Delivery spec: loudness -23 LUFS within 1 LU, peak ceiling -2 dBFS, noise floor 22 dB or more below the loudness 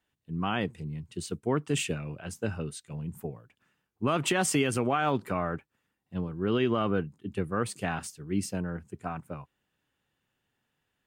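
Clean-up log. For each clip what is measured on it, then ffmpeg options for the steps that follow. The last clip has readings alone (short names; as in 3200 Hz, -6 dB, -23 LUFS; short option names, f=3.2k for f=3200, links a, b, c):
loudness -31.5 LUFS; peak -16.0 dBFS; loudness target -23.0 LUFS
-> -af "volume=8.5dB"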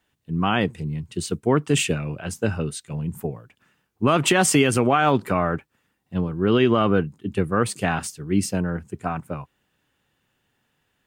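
loudness -23.0 LUFS; peak -7.5 dBFS; noise floor -72 dBFS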